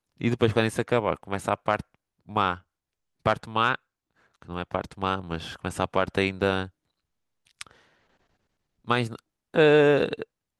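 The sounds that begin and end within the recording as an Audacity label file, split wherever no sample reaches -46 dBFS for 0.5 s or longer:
3.260000	3.760000	sound
4.420000	6.690000	sound
7.470000	7.710000	sound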